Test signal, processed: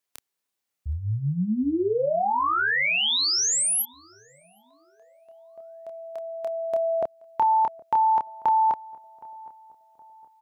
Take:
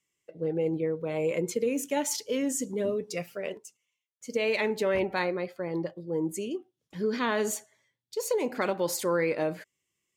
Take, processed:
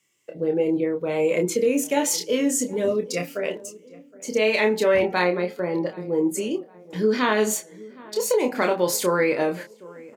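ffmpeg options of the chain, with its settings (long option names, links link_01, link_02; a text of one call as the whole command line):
ffmpeg -i in.wav -filter_complex "[0:a]highpass=frequency=140:poles=1,asplit=2[link_01][link_02];[link_02]acompressor=threshold=-42dB:ratio=6,volume=-2dB[link_03];[link_01][link_03]amix=inputs=2:normalize=0,asplit=2[link_04][link_05];[link_05]adelay=28,volume=-5dB[link_06];[link_04][link_06]amix=inputs=2:normalize=0,asplit=2[link_07][link_08];[link_08]adelay=768,lowpass=frequency=1100:poles=1,volume=-20dB,asplit=2[link_09][link_10];[link_10]adelay=768,lowpass=frequency=1100:poles=1,volume=0.49,asplit=2[link_11][link_12];[link_12]adelay=768,lowpass=frequency=1100:poles=1,volume=0.49,asplit=2[link_13][link_14];[link_14]adelay=768,lowpass=frequency=1100:poles=1,volume=0.49[link_15];[link_07][link_09][link_11][link_13][link_15]amix=inputs=5:normalize=0,volume=5dB" out.wav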